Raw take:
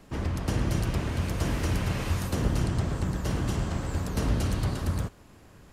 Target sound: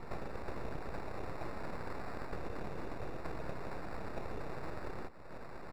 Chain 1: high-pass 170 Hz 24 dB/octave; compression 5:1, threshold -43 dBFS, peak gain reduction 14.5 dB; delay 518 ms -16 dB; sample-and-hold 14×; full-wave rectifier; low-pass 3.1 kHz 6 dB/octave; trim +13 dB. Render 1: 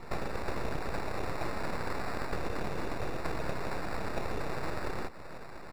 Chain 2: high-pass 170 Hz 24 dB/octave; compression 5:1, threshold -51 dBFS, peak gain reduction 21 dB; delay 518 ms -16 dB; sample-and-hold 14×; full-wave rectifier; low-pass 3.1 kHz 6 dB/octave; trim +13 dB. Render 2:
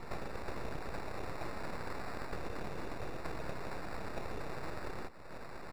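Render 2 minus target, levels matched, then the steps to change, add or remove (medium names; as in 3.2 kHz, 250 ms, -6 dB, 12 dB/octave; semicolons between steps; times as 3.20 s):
4 kHz band +4.5 dB
change: low-pass 1.4 kHz 6 dB/octave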